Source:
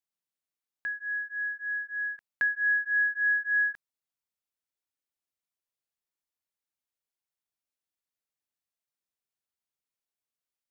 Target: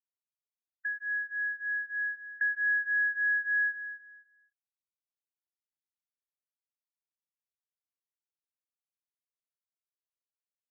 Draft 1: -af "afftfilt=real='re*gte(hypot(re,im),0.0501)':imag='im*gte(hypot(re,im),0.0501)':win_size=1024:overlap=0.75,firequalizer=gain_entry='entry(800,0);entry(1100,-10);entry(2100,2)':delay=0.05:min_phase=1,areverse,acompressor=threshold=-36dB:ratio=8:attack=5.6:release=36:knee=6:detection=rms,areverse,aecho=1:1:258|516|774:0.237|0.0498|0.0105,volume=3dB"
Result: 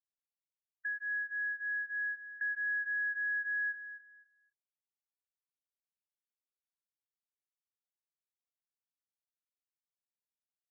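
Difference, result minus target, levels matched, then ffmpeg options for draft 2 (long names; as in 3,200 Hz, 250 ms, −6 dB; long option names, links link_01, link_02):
downward compressor: peak gain reduction +7 dB
-af "afftfilt=real='re*gte(hypot(re,im),0.0501)':imag='im*gte(hypot(re,im),0.0501)':win_size=1024:overlap=0.75,firequalizer=gain_entry='entry(800,0);entry(1100,-10);entry(2100,2)':delay=0.05:min_phase=1,areverse,acompressor=threshold=-27dB:ratio=8:attack=5.6:release=36:knee=6:detection=rms,areverse,aecho=1:1:258|516|774:0.237|0.0498|0.0105,volume=3dB"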